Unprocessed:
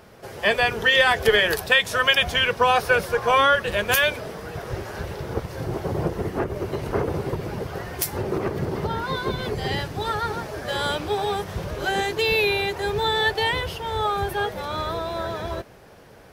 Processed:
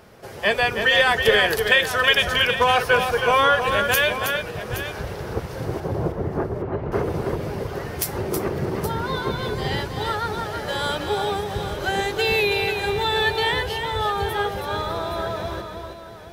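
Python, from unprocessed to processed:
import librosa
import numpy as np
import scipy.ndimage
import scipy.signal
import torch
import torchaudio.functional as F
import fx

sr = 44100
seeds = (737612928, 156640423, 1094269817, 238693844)

y = fx.lowpass(x, sr, hz=1500.0, slope=12, at=(5.8, 6.92))
y = fx.echo_multitap(y, sr, ms=(321, 821), db=(-6.5, -12.0))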